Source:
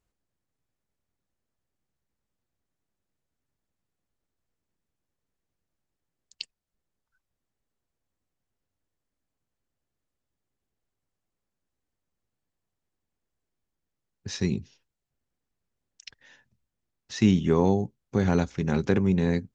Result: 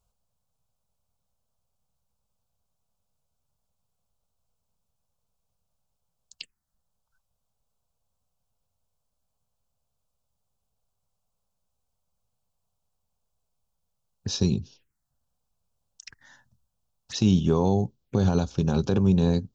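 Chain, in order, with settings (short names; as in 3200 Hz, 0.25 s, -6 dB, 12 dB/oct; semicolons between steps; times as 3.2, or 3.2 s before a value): dynamic EQ 300 Hz, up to -6 dB, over -33 dBFS, Q 0.84; limiter -17 dBFS, peak gain reduction 6 dB; envelope phaser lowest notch 320 Hz, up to 2000 Hz, full sweep at -35.5 dBFS; gain +6.5 dB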